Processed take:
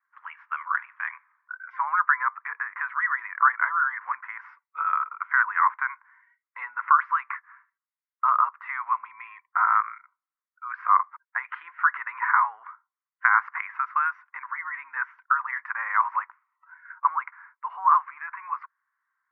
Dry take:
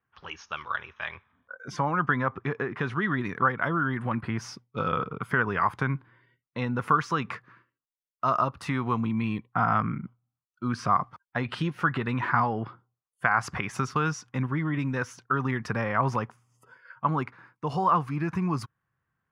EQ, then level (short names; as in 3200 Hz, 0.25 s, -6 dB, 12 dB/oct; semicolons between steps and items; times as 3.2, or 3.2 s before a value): elliptic band-pass 980–2100 Hz, stop band 80 dB; +5.5 dB